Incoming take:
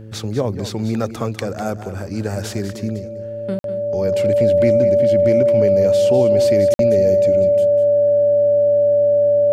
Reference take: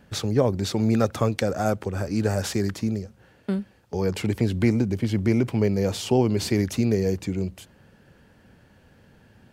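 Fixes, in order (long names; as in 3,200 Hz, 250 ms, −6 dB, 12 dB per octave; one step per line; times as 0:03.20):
hum removal 109.5 Hz, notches 5
notch filter 580 Hz, Q 30
repair the gap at 0:03.59/0:06.74, 52 ms
echo removal 198 ms −11.5 dB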